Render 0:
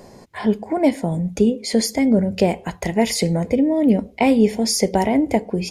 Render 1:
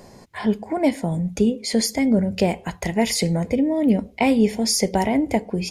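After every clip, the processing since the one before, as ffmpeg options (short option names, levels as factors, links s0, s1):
-af "equalizer=f=430:w=0.66:g=-3.5"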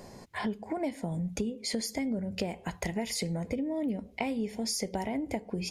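-af "acompressor=threshold=0.0447:ratio=6,volume=0.708"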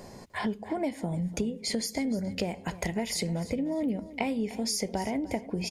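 -af "aecho=1:1:300|600|900:0.15|0.0389|0.0101,volume=1.26"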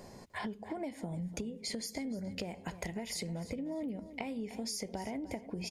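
-af "acompressor=threshold=0.0316:ratio=6,volume=0.562"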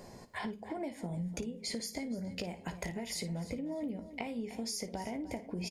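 -af "aecho=1:1:17|55:0.266|0.2"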